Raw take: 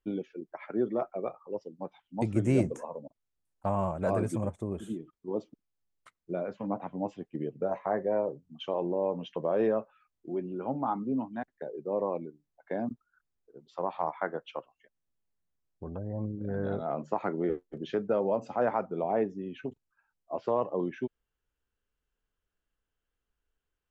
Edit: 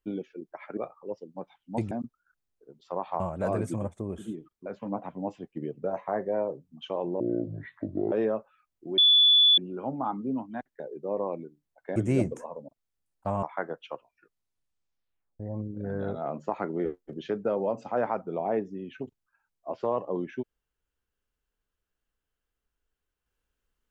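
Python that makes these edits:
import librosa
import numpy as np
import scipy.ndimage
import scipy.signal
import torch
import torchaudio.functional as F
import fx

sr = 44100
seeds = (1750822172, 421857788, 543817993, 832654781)

y = fx.edit(x, sr, fx.cut(start_s=0.77, length_s=0.44),
    fx.swap(start_s=2.35, length_s=1.47, other_s=12.78, other_length_s=1.29),
    fx.cut(start_s=5.28, length_s=1.16),
    fx.speed_span(start_s=8.98, length_s=0.56, speed=0.61),
    fx.insert_tone(at_s=10.4, length_s=0.6, hz=3450.0, db=-15.5),
    fx.tape_stop(start_s=14.58, length_s=1.46), tone=tone)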